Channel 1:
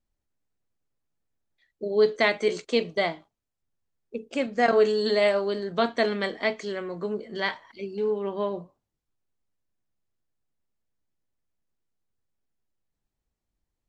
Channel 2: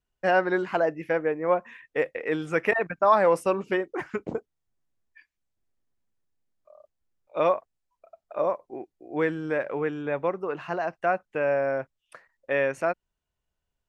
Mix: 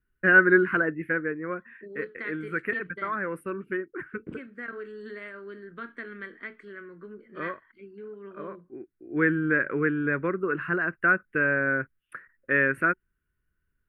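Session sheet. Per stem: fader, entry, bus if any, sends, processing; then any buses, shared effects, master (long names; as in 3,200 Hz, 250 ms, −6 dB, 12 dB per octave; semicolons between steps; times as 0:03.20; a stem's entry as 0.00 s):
−13.0 dB, 0.00 s, no send, downward compressor 2 to 1, threshold −25 dBFS, peak gain reduction 6 dB
−1.0 dB, 0.00 s, no send, low-shelf EQ 390 Hz +7.5 dB; notch filter 890 Hz, Q 15; automatic ducking −10 dB, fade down 1.15 s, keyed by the first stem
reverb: not used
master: drawn EQ curve 130 Hz 0 dB, 370 Hz +3 dB, 750 Hz −17 dB, 1,500 Hz +13 dB, 6,600 Hz −27 dB, 9,500 Hz +2 dB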